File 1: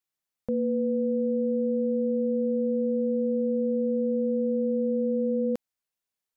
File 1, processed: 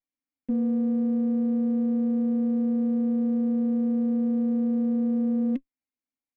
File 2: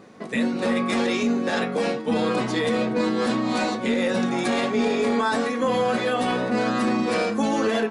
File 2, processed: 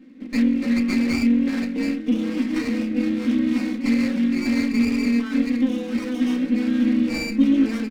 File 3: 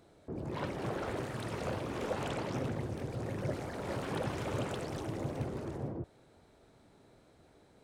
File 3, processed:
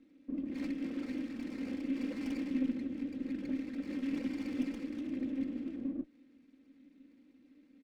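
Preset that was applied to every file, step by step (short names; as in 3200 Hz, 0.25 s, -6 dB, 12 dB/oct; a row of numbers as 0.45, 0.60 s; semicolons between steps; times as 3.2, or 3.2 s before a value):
high shelf 4900 Hz -6 dB; comb 3.8 ms, depth 91%; dynamic EQ 2300 Hz, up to +5 dB, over -44 dBFS, Q 1.6; vowel filter i; running maximum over 9 samples; gain +7.5 dB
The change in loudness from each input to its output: +1.5, +1.5, +0.5 LU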